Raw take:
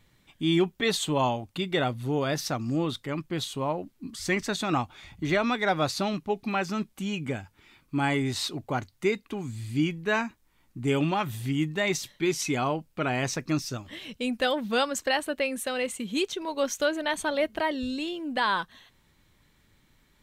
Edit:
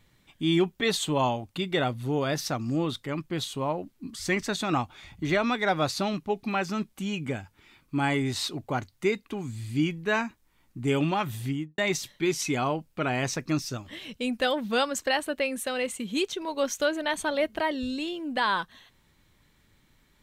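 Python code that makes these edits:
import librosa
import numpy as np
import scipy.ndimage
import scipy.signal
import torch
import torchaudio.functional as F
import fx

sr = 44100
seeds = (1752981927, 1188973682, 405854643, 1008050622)

y = fx.studio_fade_out(x, sr, start_s=11.43, length_s=0.35)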